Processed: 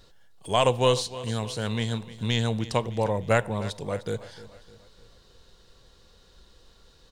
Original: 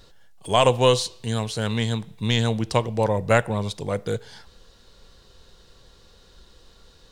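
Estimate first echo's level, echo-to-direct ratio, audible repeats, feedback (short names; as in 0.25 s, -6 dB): -16.5 dB, -15.5 dB, 3, 48%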